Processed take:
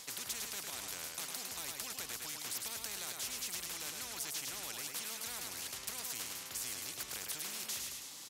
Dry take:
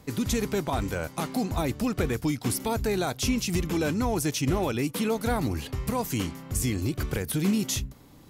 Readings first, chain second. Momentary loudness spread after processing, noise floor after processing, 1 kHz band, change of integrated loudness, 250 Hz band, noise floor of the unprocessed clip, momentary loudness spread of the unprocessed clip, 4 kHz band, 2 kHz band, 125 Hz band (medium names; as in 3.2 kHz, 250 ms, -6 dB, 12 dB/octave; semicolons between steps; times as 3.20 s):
2 LU, -49 dBFS, -17.0 dB, -11.5 dB, -30.5 dB, -51 dBFS, 5 LU, -5.0 dB, -9.5 dB, -31.0 dB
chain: band-pass filter 6.4 kHz, Q 1.7; on a send: feedback delay 105 ms, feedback 25%, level -8.5 dB; on the sum: spectrum-flattening compressor 4:1; trim -2.5 dB